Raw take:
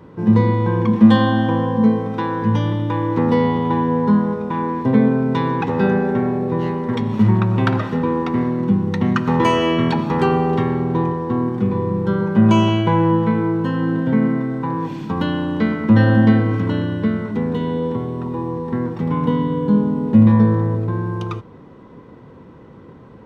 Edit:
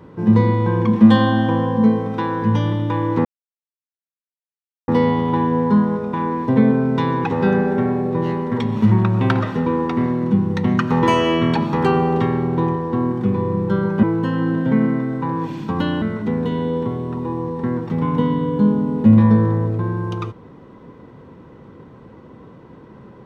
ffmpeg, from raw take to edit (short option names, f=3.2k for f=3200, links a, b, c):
-filter_complex "[0:a]asplit=4[a][b][c][d];[a]atrim=end=3.25,asetpts=PTS-STARTPTS,afade=t=out:st=3.246:d=0.004:c=hsin,apad=pad_dur=1.63[e];[b]atrim=start=3.25:end=12.402,asetpts=PTS-STARTPTS,afade=t=in:d=0.004:c=hsin[f];[c]atrim=start=13.438:end=15.432[g];[d]atrim=start=17.108[h];[e][f]concat=n=2:v=0:a=1[i];[i][g]acrossfade=d=0.004:c1=hsin:c2=hsin[j];[j][h]acrossfade=d=0.004:c1=hsin:c2=hsin"